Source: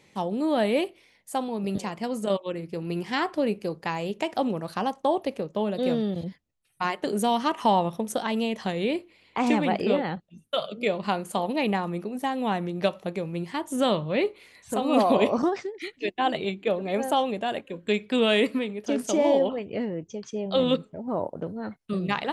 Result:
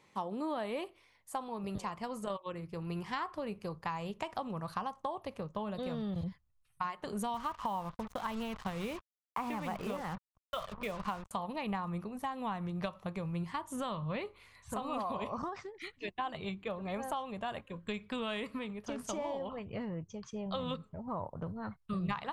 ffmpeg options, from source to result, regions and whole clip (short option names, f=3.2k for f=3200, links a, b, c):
-filter_complex "[0:a]asettb=1/sr,asplit=3[a][b][c];[a]atrim=end=7.344[d];[b]atrim=start=7.34:end=11.31,asetpts=PTS-STARTPTS,afade=t=in:d=0.004:c=qsin,afade=t=out:st=3.966:d=0.004:c=qsin,highpass=140,lowpass=3.6k,acrusher=bits=5:mix=0:aa=0.5[e];[c]atrim=start=11.306[f];[d][e]acrossfade=d=0.004:c1=hsin:c2=qsin[g];[g][f]acrossfade=d=0.004:c1=qsin:c2=hsin,equalizer=f=1.1k:t=o:w=0.68:g=11.5,acompressor=threshold=-24dB:ratio=6,asubboost=boost=9.5:cutoff=100,volume=-8.5dB"